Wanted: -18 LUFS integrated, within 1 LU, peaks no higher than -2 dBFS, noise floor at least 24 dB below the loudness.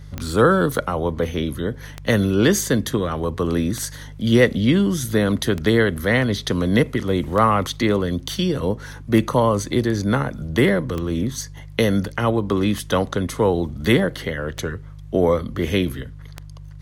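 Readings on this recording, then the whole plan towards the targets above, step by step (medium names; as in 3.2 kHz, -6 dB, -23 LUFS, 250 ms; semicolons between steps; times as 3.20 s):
clicks found 10; hum 50 Hz; highest harmonic 150 Hz; hum level -37 dBFS; loudness -20.5 LUFS; peak level -3.0 dBFS; loudness target -18.0 LUFS
-> de-click; de-hum 50 Hz, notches 3; trim +2.5 dB; peak limiter -2 dBFS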